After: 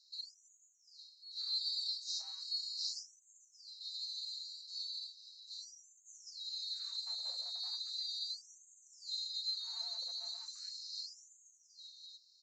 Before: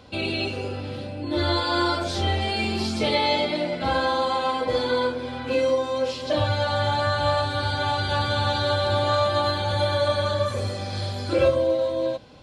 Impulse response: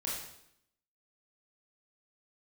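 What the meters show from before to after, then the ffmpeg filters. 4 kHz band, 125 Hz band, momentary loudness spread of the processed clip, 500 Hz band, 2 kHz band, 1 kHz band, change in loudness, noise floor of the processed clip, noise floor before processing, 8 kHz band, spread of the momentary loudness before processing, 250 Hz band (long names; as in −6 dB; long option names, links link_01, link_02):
−9.5 dB, below −40 dB, 17 LU, below −40 dB, below −40 dB, below −40 dB, −16.0 dB, −68 dBFS, −33 dBFS, −7.0 dB, 7 LU, below −40 dB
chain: -filter_complex "[0:a]afftfilt=real='re*(1-between(b*sr/4096,160,3700))':imag='im*(1-between(b*sr/4096,160,3700))':win_size=4096:overlap=0.75,equalizer=frequency=100:width_type=o:width=0.33:gain=5,equalizer=frequency=250:width_type=o:width=0.33:gain=7,equalizer=frequency=500:width_type=o:width=0.33:gain=6,equalizer=frequency=2500:width_type=o:width=0.33:gain=-11,acrossover=split=490[link_01][link_02];[link_01]asoftclip=type=hard:threshold=-25.5dB[link_03];[link_03][link_02]amix=inputs=2:normalize=0,aresample=16000,aresample=44100,afftfilt=real='re*gte(b*sr/1024,510*pow(6300/510,0.5+0.5*sin(2*PI*0.37*pts/sr)))':imag='im*gte(b*sr/1024,510*pow(6300/510,0.5+0.5*sin(2*PI*0.37*pts/sr)))':win_size=1024:overlap=0.75,volume=-4.5dB"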